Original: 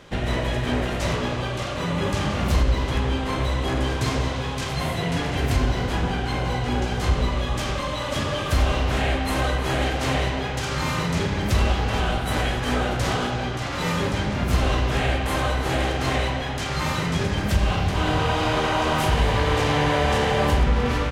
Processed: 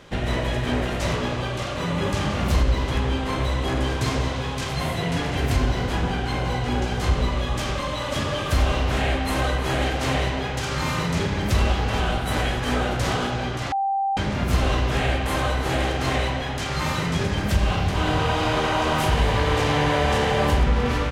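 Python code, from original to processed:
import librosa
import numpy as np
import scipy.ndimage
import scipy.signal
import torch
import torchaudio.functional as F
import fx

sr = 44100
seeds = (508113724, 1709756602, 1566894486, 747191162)

y = fx.edit(x, sr, fx.bleep(start_s=13.72, length_s=0.45, hz=785.0, db=-20.0), tone=tone)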